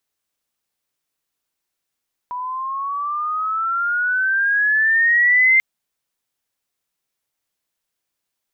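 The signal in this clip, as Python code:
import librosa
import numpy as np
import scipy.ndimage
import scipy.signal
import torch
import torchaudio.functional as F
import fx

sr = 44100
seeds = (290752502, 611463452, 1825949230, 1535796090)

y = fx.chirp(sr, length_s=3.29, from_hz=980.0, to_hz=2100.0, law='logarithmic', from_db=-24.0, to_db=-10.0)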